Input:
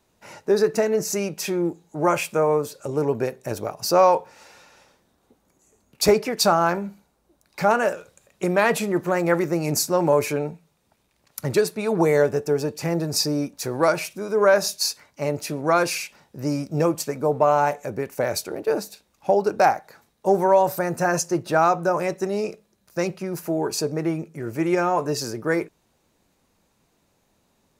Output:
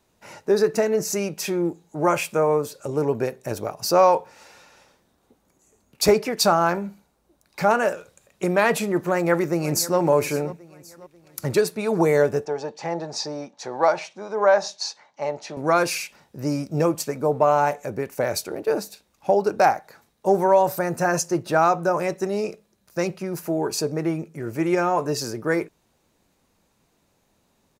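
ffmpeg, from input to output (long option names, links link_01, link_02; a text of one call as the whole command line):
ffmpeg -i in.wav -filter_complex "[0:a]asplit=2[link_01][link_02];[link_02]afade=type=in:start_time=8.98:duration=0.01,afade=type=out:start_time=9.98:duration=0.01,aecho=0:1:540|1080|1620|2160:0.141254|0.0635642|0.0286039|0.0128717[link_03];[link_01][link_03]amix=inputs=2:normalize=0,asettb=1/sr,asplit=3[link_04][link_05][link_06];[link_04]atrim=end=12.454[link_07];[link_05]atrim=start=12.45:end=15.57,asetpts=PTS-STARTPTS,afade=type=in:duration=0.004:curve=qsin,afade=type=out:start_time=3.116:duration=0.004:curve=qsin,highpass=280,equalizer=frequency=290:width_type=q:width=4:gain=-8,equalizer=frequency=420:width_type=q:width=4:gain=-5,equalizer=frequency=820:width_type=q:width=4:gain=8,equalizer=frequency=1400:width_type=q:width=4:gain=-4,equalizer=frequency=2500:width_type=q:width=4:gain=-6,equalizer=frequency=4900:width_type=q:width=4:gain=-6,lowpass=frequency=5700:width=0.5412,lowpass=frequency=5700:width=1.3066[link_08];[link_06]atrim=start=15.566[link_09];[link_07][link_08]acrossfade=duration=0.004:curve1=hsin:curve2=qsin[link_10];[link_10][link_09]acrossfade=duration=0.004:curve1=qsin:curve2=hsin" out.wav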